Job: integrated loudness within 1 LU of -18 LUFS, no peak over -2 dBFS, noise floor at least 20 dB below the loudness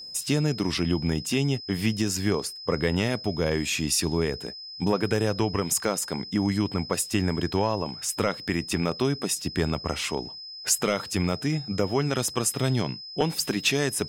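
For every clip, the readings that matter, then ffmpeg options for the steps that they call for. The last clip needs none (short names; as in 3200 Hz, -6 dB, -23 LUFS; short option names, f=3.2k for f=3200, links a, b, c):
steady tone 5100 Hz; tone level -38 dBFS; loudness -26.5 LUFS; peak -11.0 dBFS; loudness target -18.0 LUFS
-> -af "bandreject=f=5.1k:w=30"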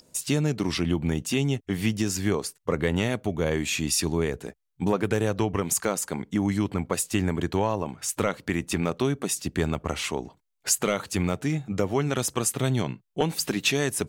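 steady tone none; loudness -26.5 LUFS; peak -11.0 dBFS; loudness target -18.0 LUFS
-> -af "volume=8.5dB"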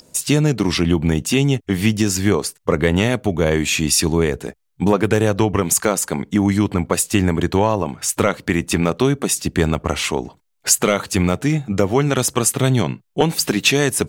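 loudness -18.0 LUFS; peak -2.5 dBFS; noise floor -64 dBFS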